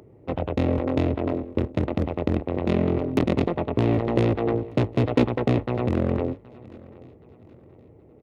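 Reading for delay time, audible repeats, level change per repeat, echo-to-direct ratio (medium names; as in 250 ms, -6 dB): 772 ms, 2, -8.0 dB, -21.5 dB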